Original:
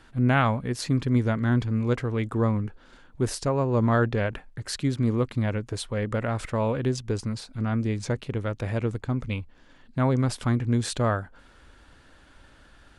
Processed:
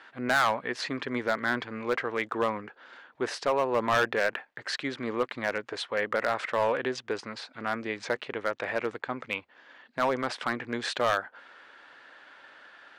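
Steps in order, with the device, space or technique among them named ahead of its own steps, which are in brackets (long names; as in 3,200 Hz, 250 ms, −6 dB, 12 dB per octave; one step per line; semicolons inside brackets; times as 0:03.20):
megaphone (band-pass filter 570–3,600 Hz; parametric band 1,800 Hz +4 dB 0.52 octaves; hard clipping −23.5 dBFS, distortion −9 dB)
level +5 dB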